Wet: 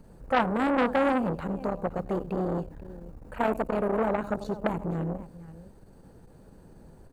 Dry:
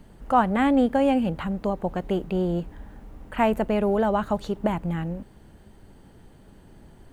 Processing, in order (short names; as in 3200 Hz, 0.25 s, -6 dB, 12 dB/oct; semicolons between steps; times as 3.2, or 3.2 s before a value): thirty-one-band EQ 160 Hz +4 dB, 500 Hz +7 dB, 2000 Hz -7 dB, 3150 Hz -12 dB; tapped delay 91/490 ms -17.5/-18.5 dB; core saturation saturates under 1200 Hz; gain -2 dB